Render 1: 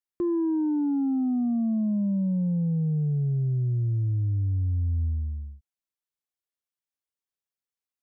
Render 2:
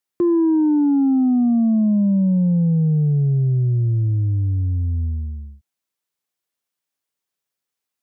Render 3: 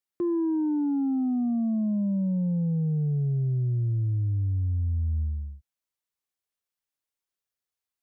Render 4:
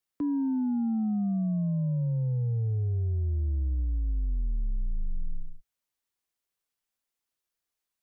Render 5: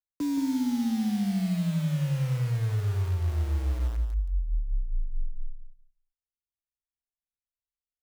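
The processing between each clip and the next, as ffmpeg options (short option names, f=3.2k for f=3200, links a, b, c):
-af "highpass=100,volume=9dB"
-af "asubboost=boost=4:cutoff=78,alimiter=limit=-15.5dB:level=0:latency=1:release=12,volume=-7dB"
-af "afreqshift=-57,alimiter=level_in=2.5dB:limit=-24dB:level=0:latency=1:release=34,volume=-2.5dB,volume=2.5dB"
-filter_complex "[0:a]acrossover=split=110[a][b];[b]acrusher=bits=6:mix=0:aa=0.000001[c];[a][c]amix=inputs=2:normalize=0,aecho=1:1:173|346|519:0.422|0.0675|0.0108"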